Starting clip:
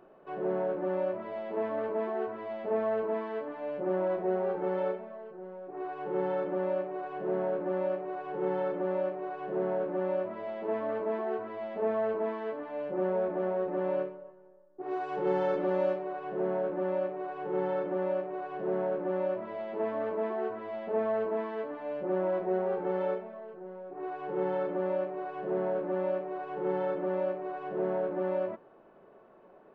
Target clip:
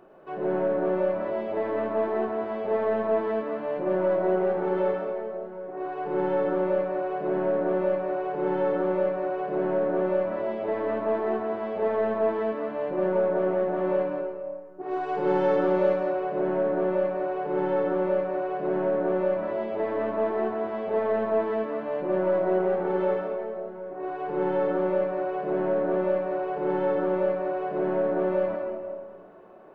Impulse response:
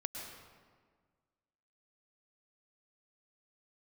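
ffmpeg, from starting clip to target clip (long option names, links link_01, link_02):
-filter_complex "[0:a]aeval=exprs='0.133*(cos(1*acos(clip(val(0)/0.133,-1,1)))-cos(1*PI/2))+0.00168*(cos(8*acos(clip(val(0)/0.133,-1,1)))-cos(8*PI/2))':channel_layout=same[link_01];[1:a]atrim=start_sample=2205[link_02];[link_01][link_02]afir=irnorm=-1:irlink=0,volume=6dB"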